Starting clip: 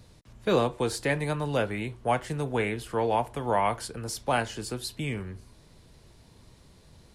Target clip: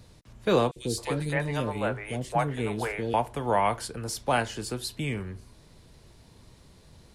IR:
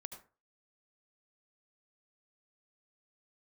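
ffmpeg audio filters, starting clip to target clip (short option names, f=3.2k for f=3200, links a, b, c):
-filter_complex "[0:a]asettb=1/sr,asplit=3[a][b][c];[a]atrim=end=0.714[d];[b]atrim=start=0.71:end=3.14,asetpts=PTS-STARTPTS,afade=t=in:d=0.004:c=qsin,afade=t=out:st=2.426:d=0.004:c=qsin,acrossover=split=460|2600[e][f][g];[e]adelay=50[h];[f]adelay=270[i];[h][i][g]amix=inputs=3:normalize=0,atrim=end_sample=107163[j];[c]atrim=start=3.136[k];[d][j]acrossfade=d=0.004:c1=hsin:c2=qsin[l];[l][k]acrossfade=d=0.004:c1=qsin:c2=hsin,volume=1dB"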